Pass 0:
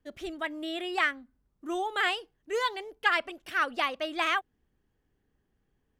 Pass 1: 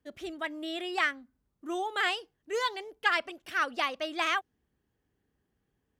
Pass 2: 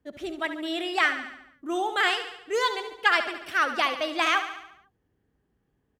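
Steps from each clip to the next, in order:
high-pass filter 56 Hz; dynamic equaliser 5,600 Hz, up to +6 dB, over −52 dBFS, Q 1.9; level −1.5 dB
repeating echo 71 ms, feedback 59%, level −10.5 dB; one half of a high-frequency compander decoder only; level +5 dB

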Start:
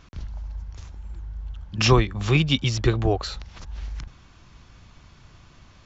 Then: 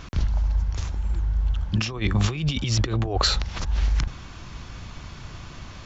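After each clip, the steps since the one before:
compressor whose output falls as the input rises −29 dBFS, ratio −1
level +6.5 dB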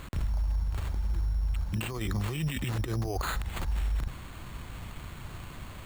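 brickwall limiter −20 dBFS, peak gain reduction 10.5 dB
sample-rate reduction 5,500 Hz, jitter 0%
level −3 dB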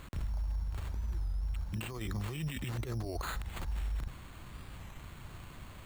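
wow of a warped record 33 1/3 rpm, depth 160 cents
level −6 dB

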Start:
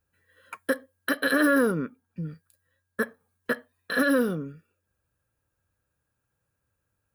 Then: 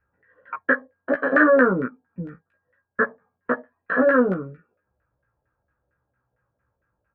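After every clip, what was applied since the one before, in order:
high shelf with overshoot 3,200 Hz −9.5 dB, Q 1.5
auto-filter low-pass saw down 4.4 Hz 580–1,800 Hz
double-tracking delay 16 ms −2.5 dB
level +1.5 dB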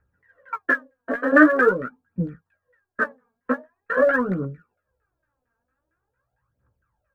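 phase shifter 0.45 Hz, delay 4.5 ms, feedback 72%
level −3.5 dB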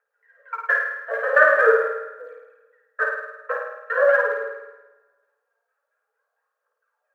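Chebyshev high-pass with heavy ripple 430 Hz, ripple 3 dB
flutter between parallel walls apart 9.1 metres, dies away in 0.92 s
convolution reverb RT60 1.5 s, pre-delay 5 ms, DRR 13 dB

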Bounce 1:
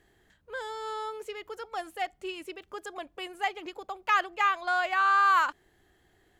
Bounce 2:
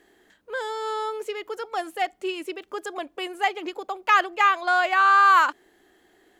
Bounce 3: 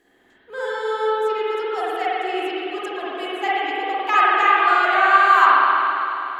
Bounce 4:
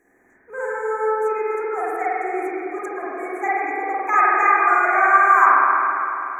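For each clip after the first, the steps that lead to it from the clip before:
low shelf with overshoot 180 Hz −13 dB, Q 1.5; level +6 dB
spring reverb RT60 3.2 s, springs 46/50 ms, chirp 75 ms, DRR −9 dB; level −4 dB
brick-wall band-stop 2,500–5,700 Hz

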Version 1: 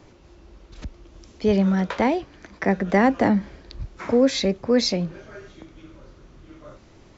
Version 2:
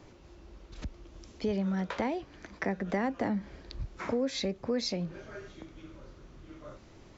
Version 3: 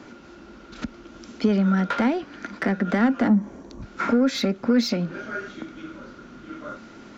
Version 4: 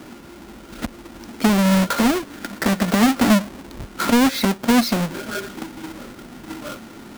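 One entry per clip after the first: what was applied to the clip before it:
downward compressor 2.5 to 1, threshold −28 dBFS, peak gain reduction 10.5 dB; level −3.5 dB
gain on a spectral selection 0:03.28–0:03.83, 1,200–5,500 Hz −13 dB; mid-hump overdrive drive 16 dB, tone 5,400 Hz, clips at −17.5 dBFS; hollow resonant body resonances 230/1,400 Hz, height 16 dB, ringing for 40 ms
each half-wave held at its own peak

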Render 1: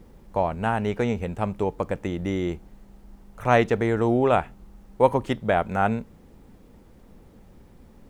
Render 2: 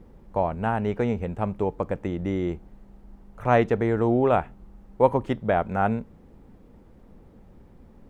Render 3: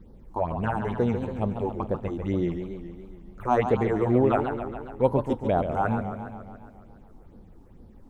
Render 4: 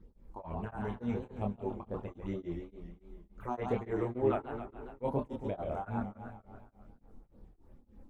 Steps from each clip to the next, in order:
high-shelf EQ 2,700 Hz −11 dB
all-pass phaser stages 6, 2.2 Hz, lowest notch 130–2,400 Hz; feedback echo with a swinging delay time 139 ms, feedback 64%, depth 191 cents, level −8 dB
multi-voice chorus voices 6, 0.26 Hz, delay 27 ms, depth 2.7 ms; tremolo along a rectified sine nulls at 3.5 Hz; level −4.5 dB

